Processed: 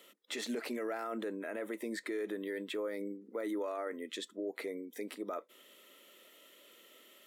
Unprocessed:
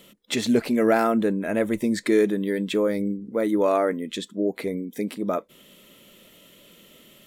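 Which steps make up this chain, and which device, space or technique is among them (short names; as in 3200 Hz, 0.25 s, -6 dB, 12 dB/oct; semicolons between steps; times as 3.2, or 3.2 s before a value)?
laptop speaker (HPF 310 Hz 24 dB/oct; bell 1300 Hz +4.5 dB 0.31 oct; bell 1900 Hz +5 dB 0.2 oct; limiter -22 dBFS, peak gain reduction 13.5 dB); 1.44–3.01 bell 6100 Hz -5.5 dB 0.89 oct; gain -7.5 dB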